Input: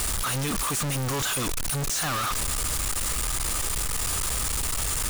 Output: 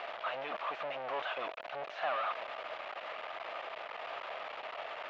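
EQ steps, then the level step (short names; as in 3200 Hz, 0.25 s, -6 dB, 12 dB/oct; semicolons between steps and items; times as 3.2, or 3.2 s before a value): resonant high-pass 640 Hz, resonance Q 5.6; ladder low-pass 3400 Hz, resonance 35%; air absorption 200 m; -2.0 dB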